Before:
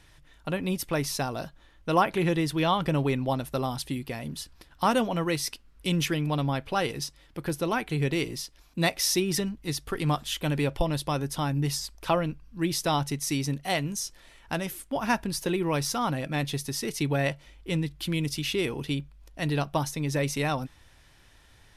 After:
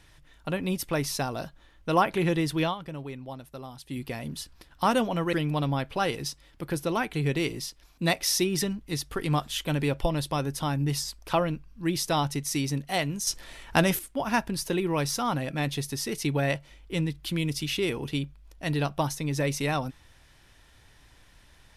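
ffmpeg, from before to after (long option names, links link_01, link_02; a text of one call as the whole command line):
ffmpeg -i in.wav -filter_complex "[0:a]asplit=6[link_01][link_02][link_03][link_04][link_05][link_06];[link_01]atrim=end=2.75,asetpts=PTS-STARTPTS,afade=type=out:start_time=2.63:duration=0.12:silence=0.251189[link_07];[link_02]atrim=start=2.75:end=3.87,asetpts=PTS-STARTPTS,volume=-12dB[link_08];[link_03]atrim=start=3.87:end=5.332,asetpts=PTS-STARTPTS,afade=type=in:duration=0.12:silence=0.251189[link_09];[link_04]atrim=start=6.088:end=14.032[link_10];[link_05]atrim=start=14.028:end=14.752,asetpts=PTS-STARTPTS,volume=8.5dB[link_11];[link_06]atrim=start=14.748[link_12];[link_07][link_08][link_09]concat=n=3:v=0:a=1[link_13];[link_13][link_10]acrossfade=duration=0.004:curve1=hsin:curve2=hsin[link_14];[link_14][link_11]acrossfade=duration=0.004:curve1=hsin:curve2=hsin[link_15];[link_15][link_12]acrossfade=duration=0.004:curve1=hsin:curve2=hsin" out.wav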